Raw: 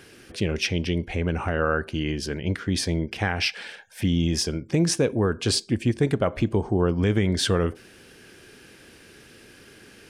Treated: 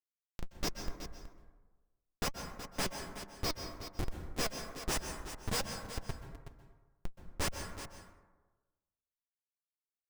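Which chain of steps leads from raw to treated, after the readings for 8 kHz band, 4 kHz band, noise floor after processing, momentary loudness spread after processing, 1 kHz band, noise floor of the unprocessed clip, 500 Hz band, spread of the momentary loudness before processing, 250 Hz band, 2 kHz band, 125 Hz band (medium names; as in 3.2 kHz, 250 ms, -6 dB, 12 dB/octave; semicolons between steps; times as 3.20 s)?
-10.0 dB, -12.5 dB, under -85 dBFS, 17 LU, -10.5 dB, -50 dBFS, -19.0 dB, 6 LU, -21.5 dB, -14.5 dB, -20.5 dB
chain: partials quantised in pitch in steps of 2 st; Chebyshev band-stop 180–4900 Hz, order 5; tilt shelf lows -6 dB, about 1.5 kHz; in parallel at 0 dB: compression 5:1, threshold -30 dBFS, peak gain reduction 19 dB; on the sum: transient shaper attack -11 dB, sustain +7 dB; gain riding within 4 dB 0.5 s; Schmitt trigger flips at -16 dBFS; flange 1.2 Hz, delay 1.2 ms, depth 4.7 ms, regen +63%; on a send: delay 372 ms -11.5 dB; on the sum: plate-style reverb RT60 1.2 s, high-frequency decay 0.4×, pre-delay 115 ms, DRR 6.5 dB; trim -2.5 dB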